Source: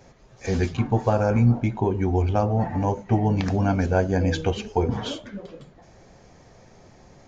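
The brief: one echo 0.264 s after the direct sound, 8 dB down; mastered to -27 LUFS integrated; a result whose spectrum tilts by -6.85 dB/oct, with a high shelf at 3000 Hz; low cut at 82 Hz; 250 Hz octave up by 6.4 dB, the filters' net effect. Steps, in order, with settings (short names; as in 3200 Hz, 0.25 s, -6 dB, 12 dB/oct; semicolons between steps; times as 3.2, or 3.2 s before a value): HPF 82 Hz; bell 250 Hz +8 dB; high shelf 3000 Hz +7 dB; echo 0.264 s -8 dB; gain -7.5 dB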